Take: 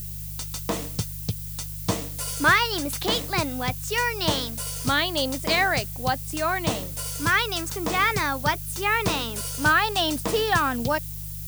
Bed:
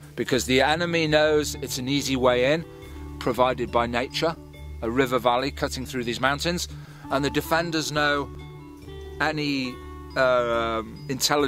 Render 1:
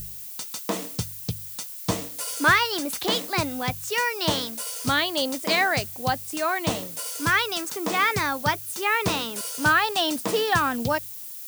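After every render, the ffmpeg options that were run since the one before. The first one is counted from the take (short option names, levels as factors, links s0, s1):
-af "bandreject=f=50:t=h:w=4,bandreject=f=100:t=h:w=4,bandreject=f=150:t=h:w=4"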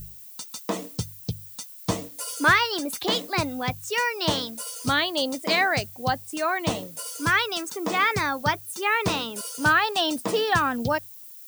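-af "afftdn=nr=9:nf=-38"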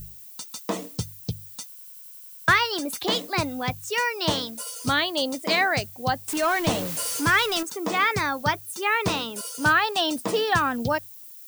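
-filter_complex "[0:a]asettb=1/sr,asplit=3[s0][s1][s2];[s0]atrim=end=6.284[s3];[s1]atrim=start=6.28:end=7.63,asetpts=PTS-STARTPTS,afade=t=in:d=0.004:c=qsin,afade=t=out:st=1.346:d=0.004:c=qsin,aeval=exprs='val(0)+0.5*0.0447*sgn(val(0))':c=same[s4];[s2]atrim=start=7.626[s5];[s3][s4]acrossfade=d=0.004:c1=hsin:c2=qsin[s6];[s6][s5]acrossfade=d=0.004:c1=qsin:c2=hsin,asplit=10[s7][s8][s9][s10][s11][s12][s13][s14][s15][s16];[s7]atrim=end=1.762[s17];[s8]atrim=start=1.668:end=1.762[s18];[s9]atrim=start=1.668:end=1.762[s19];[s10]atrim=start=1.668:end=1.762[s20];[s11]atrim=start=1.668:end=1.762[s21];[s12]atrim=start=1.668:end=1.762[s22];[s13]atrim=start=1.668:end=1.762[s23];[s14]atrim=start=1.668:end=1.762[s24];[s15]atrim=start=1.668:end=1.762[s25];[s16]atrim=start=2.478[s26];[s17][s18]acrossfade=d=0.004:c1=hsin:c2=hsin[s27];[s27][s19]acrossfade=d=0.004:c1=hsin:c2=hsin[s28];[s28][s20]acrossfade=d=0.004:c1=hsin:c2=hsin[s29];[s29][s21]acrossfade=d=0.004:c1=hsin:c2=hsin[s30];[s30][s22]acrossfade=d=0.004:c1=hsin:c2=hsin[s31];[s31][s23]acrossfade=d=0.004:c1=hsin:c2=hsin[s32];[s32][s24]acrossfade=d=0.004:c1=hsin:c2=hsin[s33];[s33][s25]acrossfade=d=0.004:c1=hsin:c2=hsin[s34];[s34][s26]acrossfade=d=0.004:c1=hsin:c2=hsin"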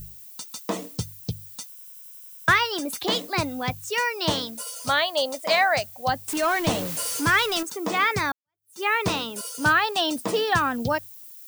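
-filter_complex "[0:a]asettb=1/sr,asplit=3[s0][s1][s2];[s0]atrim=end=1.704[s3];[s1]atrim=start=1.7:end=2.82,asetpts=PTS-STARTPTS,afade=t=in:d=0.004:c=qsin,afade=t=out:st=1.116:d=0.004:c=qsin,bandreject=f=4400:w=12[s4];[s2]atrim=start=2.816[s5];[s3][s4]acrossfade=d=0.004:c1=hsin:c2=qsin[s6];[s6][s5]acrossfade=d=0.004:c1=qsin:c2=hsin,asettb=1/sr,asplit=3[s7][s8][s9];[s7]atrim=end=4.734[s10];[s8]atrim=start=4.73:end=6.09,asetpts=PTS-STARTPTS,afade=t=in:d=0.004:c=qsin,afade=t=out:st=1.356:d=0.004:c=qsin,lowshelf=f=480:t=q:w=3:g=-6.5[s11];[s9]atrim=start=6.086[s12];[s10][s11]acrossfade=d=0.004:c1=hsin:c2=qsin[s13];[s13][s12]acrossfade=d=0.004:c1=qsin:c2=hsin,asplit=2[s14][s15];[s14]atrim=end=8.32,asetpts=PTS-STARTPTS,afade=t=out:st=8.316:d=0.004:c=hsin[s16];[s15]atrim=start=8.32,asetpts=PTS-STARTPTS,afade=t=in:d=0.49:c=exp[s17];[s16][s17]concat=n=2:v=0:a=1"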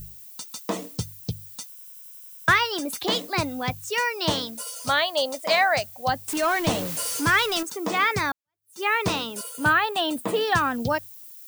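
-filter_complex "[0:a]asettb=1/sr,asplit=3[s0][s1][s2];[s0]atrim=end=9.434[s3];[s1]atrim=start=9.43:end=10.41,asetpts=PTS-STARTPTS,afade=t=in:d=0.004:c=qsin,afade=t=out:st=0.976:d=0.004:c=qsin,equalizer=f=5500:t=o:w=0.57:g=-13.5[s4];[s2]atrim=start=10.406[s5];[s3][s4]acrossfade=d=0.004:c1=hsin:c2=qsin[s6];[s6][s5]acrossfade=d=0.004:c1=qsin:c2=hsin"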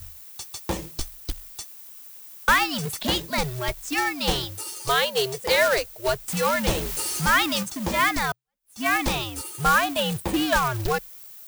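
-af "afreqshift=-130,acrusher=bits=2:mode=log:mix=0:aa=0.000001"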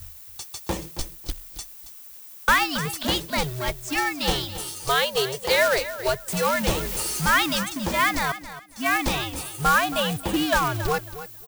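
-af "aecho=1:1:274|548|822:0.211|0.0465|0.0102"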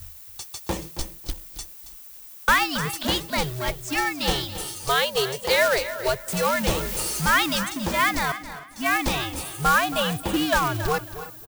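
-filter_complex "[0:a]asplit=2[s0][s1];[s1]adelay=316,lowpass=f=2900:p=1,volume=0.141,asplit=2[s2][s3];[s3]adelay=316,lowpass=f=2900:p=1,volume=0.34,asplit=2[s4][s5];[s5]adelay=316,lowpass=f=2900:p=1,volume=0.34[s6];[s0][s2][s4][s6]amix=inputs=4:normalize=0"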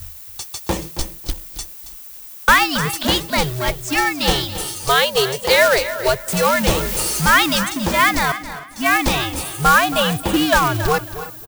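-af "volume=2.11"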